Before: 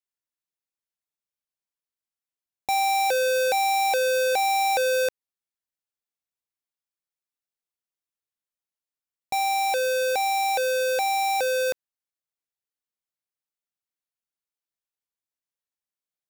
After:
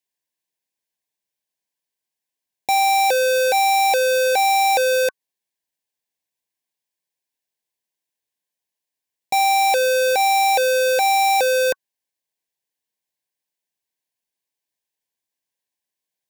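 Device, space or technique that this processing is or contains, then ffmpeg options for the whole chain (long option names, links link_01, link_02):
PA system with an anti-feedback notch: -af "highpass=frequency=140:poles=1,asuperstop=centerf=1300:order=20:qfactor=3.3,alimiter=limit=-20dB:level=0:latency=1,volume=7.5dB"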